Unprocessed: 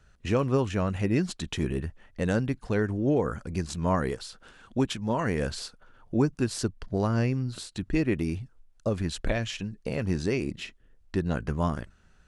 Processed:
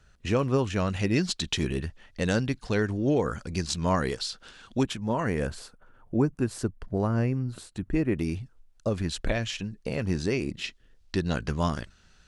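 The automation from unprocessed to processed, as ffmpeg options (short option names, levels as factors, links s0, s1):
-af "asetnsamples=n=441:p=0,asendcmd='0.76 equalizer g 10;4.83 equalizer g -1.5;5.47 equalizer g -9;8.18 equalizer g 2.5;10.64 equalizer g 11.5',equalizer=f=4500:t=o:w=1.7:g=3"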